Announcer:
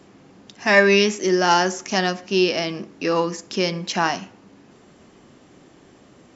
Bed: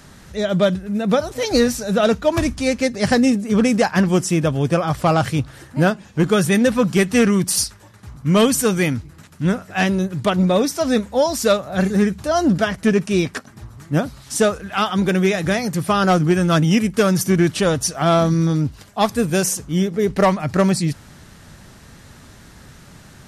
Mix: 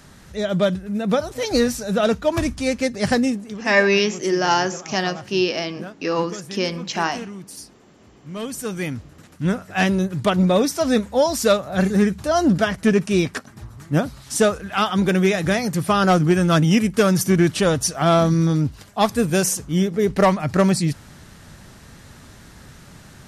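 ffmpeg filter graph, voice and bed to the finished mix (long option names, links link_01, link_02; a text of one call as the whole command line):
ffmpeg -i stem1.wav -i stem2.wav -filter_complex "[0:a]adelay=3000,volume=-1.5dB[link_01];[1:a]volume=16dB,afade=type=out:start_time=3.14:duration=0.45:silence=0.149624,afade=type=in:start_time=8.31:duration=1.5:silence=0.11885[link_02];[link_01][link_02]amix=inputs=2:normalize=0" out.wav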